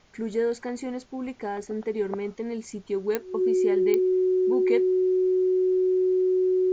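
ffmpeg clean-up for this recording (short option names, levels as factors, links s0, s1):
-af "adeclick=t=4,bandreject=f=370:w=30,agate=range=0.0891:threshold=0.0141"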